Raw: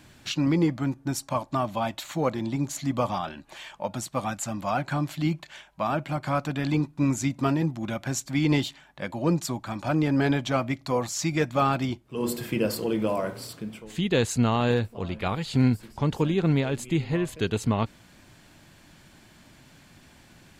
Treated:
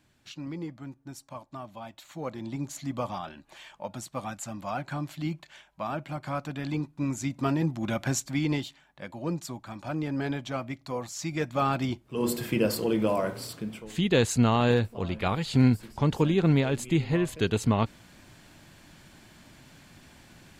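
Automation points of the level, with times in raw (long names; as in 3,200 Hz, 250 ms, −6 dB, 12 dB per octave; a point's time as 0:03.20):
0:01.93 −14 dB
0:02.53 −6 dB
0:07.10 −6 dB
0:08.05 +2.5 dB
0:08.64 −7.5 dB
0:11.11 −7.5 dB
0:12.07 +0.5 dB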